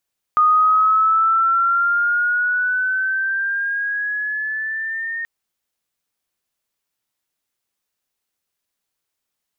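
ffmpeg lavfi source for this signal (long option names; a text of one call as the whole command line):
ffmpeg -f lavfi -i "aevalsrc='pow(10,(-10.5-12.5*t/4.88)/20)*sin(2*PI*1230*4.88/(7*log(2)/12)*(exp(7*log(2)/12*t/4.88)-1))':duration=4.88:sample_rate=44100" out.wav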